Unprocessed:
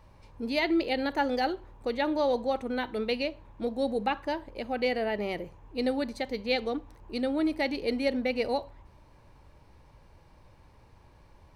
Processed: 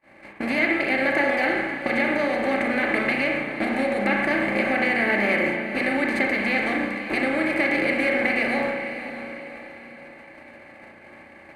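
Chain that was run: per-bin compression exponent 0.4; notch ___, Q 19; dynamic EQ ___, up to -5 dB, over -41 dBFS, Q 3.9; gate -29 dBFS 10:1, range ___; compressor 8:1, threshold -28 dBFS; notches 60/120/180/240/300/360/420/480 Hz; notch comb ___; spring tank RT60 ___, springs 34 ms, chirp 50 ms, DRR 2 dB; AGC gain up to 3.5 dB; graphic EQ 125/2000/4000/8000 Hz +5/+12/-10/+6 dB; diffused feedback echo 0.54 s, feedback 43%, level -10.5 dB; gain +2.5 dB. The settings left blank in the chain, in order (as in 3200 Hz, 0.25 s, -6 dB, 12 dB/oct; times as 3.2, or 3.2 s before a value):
5800 Hz, 850 Hz, -47 dB, 480 Hz, 1.1 s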